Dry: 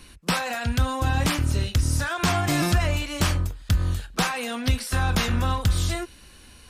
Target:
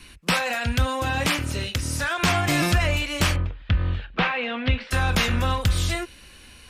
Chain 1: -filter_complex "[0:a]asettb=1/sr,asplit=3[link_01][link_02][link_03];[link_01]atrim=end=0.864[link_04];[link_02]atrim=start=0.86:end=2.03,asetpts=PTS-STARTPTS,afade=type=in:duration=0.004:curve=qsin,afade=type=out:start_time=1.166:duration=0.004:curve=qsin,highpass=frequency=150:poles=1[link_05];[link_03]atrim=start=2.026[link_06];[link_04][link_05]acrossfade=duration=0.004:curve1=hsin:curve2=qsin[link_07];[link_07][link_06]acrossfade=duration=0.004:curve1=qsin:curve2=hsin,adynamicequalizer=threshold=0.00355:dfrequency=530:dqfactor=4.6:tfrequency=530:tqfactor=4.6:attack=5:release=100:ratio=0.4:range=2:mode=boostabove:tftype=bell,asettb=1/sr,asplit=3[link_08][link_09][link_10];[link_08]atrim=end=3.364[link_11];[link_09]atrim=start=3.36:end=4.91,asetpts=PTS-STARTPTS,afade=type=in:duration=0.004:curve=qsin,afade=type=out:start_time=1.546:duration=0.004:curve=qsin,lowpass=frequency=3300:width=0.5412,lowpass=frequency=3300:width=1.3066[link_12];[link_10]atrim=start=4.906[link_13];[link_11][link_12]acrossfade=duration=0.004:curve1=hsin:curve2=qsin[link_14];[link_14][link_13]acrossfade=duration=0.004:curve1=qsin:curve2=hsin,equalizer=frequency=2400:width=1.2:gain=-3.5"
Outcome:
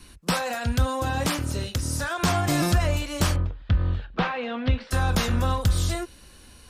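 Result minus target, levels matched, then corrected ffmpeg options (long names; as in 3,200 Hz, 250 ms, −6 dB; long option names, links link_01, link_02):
2,000 Hz band −4.5 dB
-filter_complex "[0:a]asettb=1/sr,asplit=3[link_01][link_02][link_03];[link_01]atrim=end=0.864[link_04];[link_02]atrim=start=0.86:end=2.03,asetpts=PTS-STARTPTS,afade=type=in:duration=0.004:curve=qsin,afade=type=out:start_time=1.166:duration=0.004:curve=qsin,highpass=frequency=150:poles=1[link_05];[link_03]atrim=start=2.026[link_06];[link_04][link_05]acrossfade=duration=0.004:curve1=hsin:curve2=qsin[link_07];[link_07][link_06]acrossfade=duration=0.004:curve1=qsin:curve2=hsin,adynamicequalizer=threshold=0.00355:dfrequency=530:dqfactor=4.6:tfrequency=530:tqfactor=4.6:attack=5:release=100:ratio=0.4:range=2:mode=boostabove:tftype=bell,asettb=1/sr,asplit=3[link_08][link_09][link_10];[link_08]atrim=end=3.364[link_11];[link_09]atrim=start=3.36:end=4.91,asetpts=PTS-STARTPTS,afade=type=in:duration=0.004:curve=qsin,afade=type=out:start_time=1.546:duration=0.004:curve=qsin,lowpass=frequency=3300:width=0.5412,lowpass=frequency=3300:width=1.3066[link_12];[link_10]atrim=start=4.906[link_13];[link_11][link_12]acrossfade=duration=0.004:curve1=hsin:curve2=qsin[link_14];[link_14][link_13]acrossfade=duration=0.004:curve1=qsin:curve2=hsin,equalizer=frequency=2400:width=1.2:gain=6"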